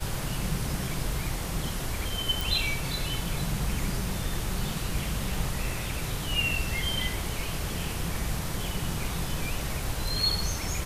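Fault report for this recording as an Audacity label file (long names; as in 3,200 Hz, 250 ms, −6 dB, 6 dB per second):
2.410000	2.410000	click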